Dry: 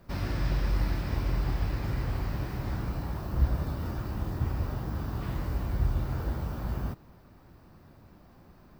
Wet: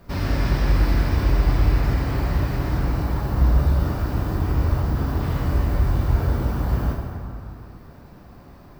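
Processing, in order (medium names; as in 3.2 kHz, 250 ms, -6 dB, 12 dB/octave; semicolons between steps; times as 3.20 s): plate-style reverb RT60 2.5 s, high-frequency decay 0.55×, DRR -1 dB; trim +6 dB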